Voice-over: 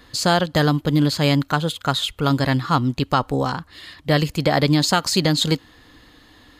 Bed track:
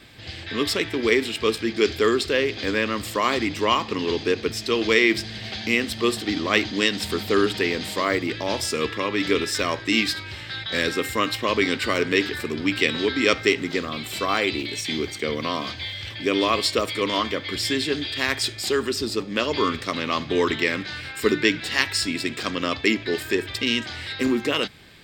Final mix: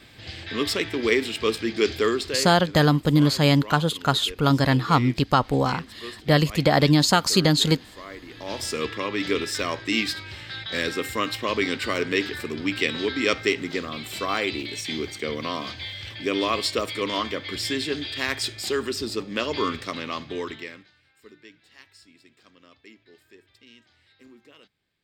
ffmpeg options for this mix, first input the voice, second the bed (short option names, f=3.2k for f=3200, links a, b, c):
-filter_complex "[0:a]adelay=2200,volume=-0.5dB[a];[1:a]volume=13dB,afade=t=out:st=1.98:d=0.68:silence=0.158489,afade=t=in:st=8.28:d=0.41:silence=0.188365,afade=t=out:st=19.7:d=1.22:silence=0.0501187[b];[a][b]amix=inputs=2:normalize=0"